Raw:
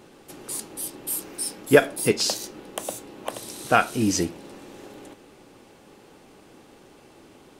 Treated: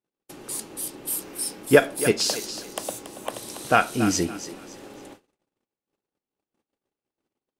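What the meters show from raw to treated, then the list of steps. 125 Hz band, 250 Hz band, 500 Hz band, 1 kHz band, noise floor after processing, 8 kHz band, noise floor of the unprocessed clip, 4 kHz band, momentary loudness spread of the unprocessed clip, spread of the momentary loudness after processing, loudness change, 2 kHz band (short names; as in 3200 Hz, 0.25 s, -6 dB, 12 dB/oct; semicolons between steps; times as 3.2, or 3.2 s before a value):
0.0 dB, 0.0 dB, 0.0 dB, +0.5 dB, under -85 dBFS, +0.5 dB, -52 dBFS, +0.5 dB, 24 LU, 20 LU, 0.0 dB, +0.5 dB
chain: on a send: thinning echo 0.281 s, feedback 31%, high-pass 470 Hz, level -11 dB; on the sum: gate -45 dBFS, range -43 dB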